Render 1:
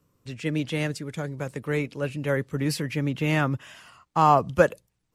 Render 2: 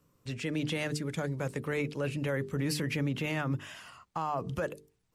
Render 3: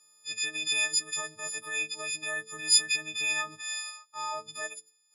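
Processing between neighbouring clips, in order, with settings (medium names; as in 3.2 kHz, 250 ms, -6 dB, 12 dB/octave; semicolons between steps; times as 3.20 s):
hum notches 50/100/150/200/250/300/350/400/450 Hz; compression, threshold -22 dBFS, peak gain reduction 10 dB; peak limiter -23 dBFS, peak gain reduction 10.5 dB
partials quantised in pitch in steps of 6 st; frequency weighting ITU-R 468; transient shaper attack -7 dB, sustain -3 dB; trim -5 dB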